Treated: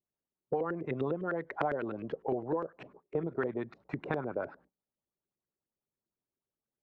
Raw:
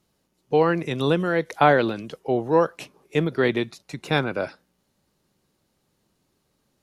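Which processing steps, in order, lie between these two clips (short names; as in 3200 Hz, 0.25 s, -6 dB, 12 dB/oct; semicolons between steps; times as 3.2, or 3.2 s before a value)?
gate -52 dBFS, range -25 dB; LFO low-pass saw up 9.9 Hz 360–2000 Hz; compressor 6:1, threshold -28 dBFS, peak gain reduction 18.5 dB; on a send: reverb RT60 0.20 s, pre-delay 3 ms, DRR 21.5 dB; on the sum: gain -2.5 dB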